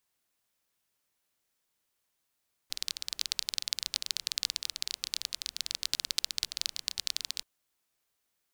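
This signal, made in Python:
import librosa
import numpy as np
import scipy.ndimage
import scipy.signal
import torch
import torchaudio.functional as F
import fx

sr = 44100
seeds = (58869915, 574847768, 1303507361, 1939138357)

y = fx.rain(sr, seeds[0], length_s=4.73, drops_per_s=20.0, hz=4300.0, bed_db=-26)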